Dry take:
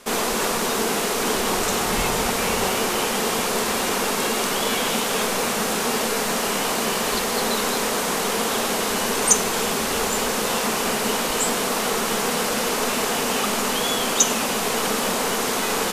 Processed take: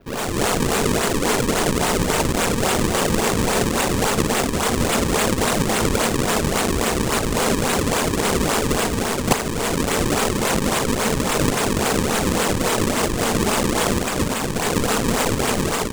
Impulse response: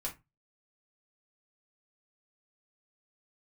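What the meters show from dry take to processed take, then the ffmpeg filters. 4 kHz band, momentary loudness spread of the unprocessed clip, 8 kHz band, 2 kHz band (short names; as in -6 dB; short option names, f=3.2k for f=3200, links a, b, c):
-1.0 dB, 2 LU, -1.5 dB, +1.0 dB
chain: -af "dynaudnorm=f=120:g=5:m=7dB,acrusher=samples=36:mix=1:aa=0.000001:lfo=1:lforange=57.6:lforate=3.6,adynamicequalizer=threshold=0.00794:dfrequency=8000:dqfactor=1.1:tfrequency=8000:tqfactor=1.1:attack=5:release=100:ratio=0.375:range=4:mode=boostabove:tftype=bell,volume=-3.5dB"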